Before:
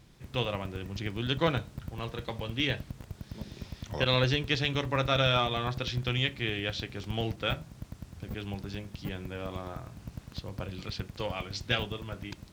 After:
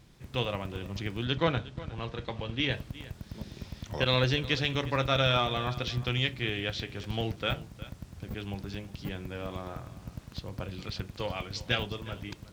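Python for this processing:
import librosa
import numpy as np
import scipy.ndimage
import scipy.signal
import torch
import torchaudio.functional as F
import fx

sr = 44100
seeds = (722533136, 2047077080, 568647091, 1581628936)

p1 = fx.lowpass(x, sr, hz=5500.0, slope=12, at=(1.25, 2.71))
y = p1 + fx.echo_single(p1, sr, ms=360, db=-17.5, dry=0)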